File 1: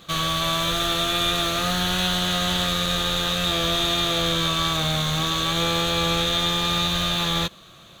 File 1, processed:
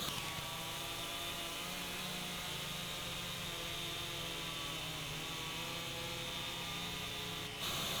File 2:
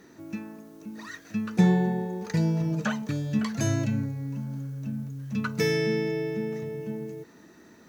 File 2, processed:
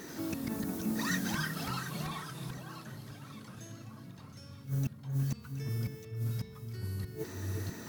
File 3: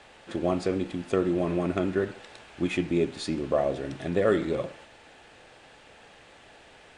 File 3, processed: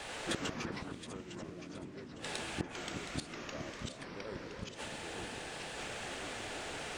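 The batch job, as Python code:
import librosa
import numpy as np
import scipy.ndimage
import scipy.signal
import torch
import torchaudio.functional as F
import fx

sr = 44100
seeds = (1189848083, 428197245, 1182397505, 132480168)

p1 = fx.high_shelf(x, sr, hz=6000.0, db=12.0)
p2 = fx.gate_flip(p1, sr, shuts_db=-27.0, range_db=-31)
p3 = p2 + fx.echo_alternate(p2, sr, ms=360, hz=2000.0, feedback_pct=59, wet_db=-7.5, dry=0)
p4 = fx.vibrato(p3, sr, rate_hz=2.5, depth_cents=13.0)
p5 = 10.0 ** (-40.0 / 20.0) * np.tanh(p4 / 10.0 ** (-40.0 / 20.0))
p6 = p4 + F.gain(torch.from_numpy(p5), -5.0).numpy()
p7 = fx.echo_pitch(p6, sr, ms=81, semitones=-3, count=3, db_per_echo=-3.0)
y = F.gain(torch.from_numpy(p7), 2.5).numpy()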